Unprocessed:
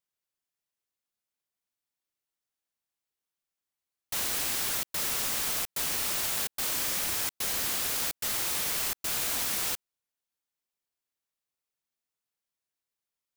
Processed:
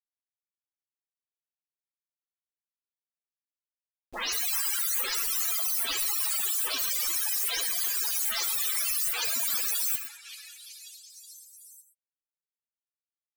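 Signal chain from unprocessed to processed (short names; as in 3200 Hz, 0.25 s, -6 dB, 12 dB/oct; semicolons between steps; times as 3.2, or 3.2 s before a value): spectral delay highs late, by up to 0.205 s; in parallel at +3 dB: limiter -24 dBFS, peak gain reduction 6.5 dB; on the sum: bell 110 Hz -12.5 dB 1.1 oct; loudest bins only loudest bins 32; sample gate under -49.5 dBFS; high shelf 2900 Hz +8 dB; on a send: delay with a stepping band-pass 0.371 s, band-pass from 1300 Hz, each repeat 0.7 oct, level -6 dB; on the sum: non-linear reverb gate 0.14 s rising, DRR 10 dB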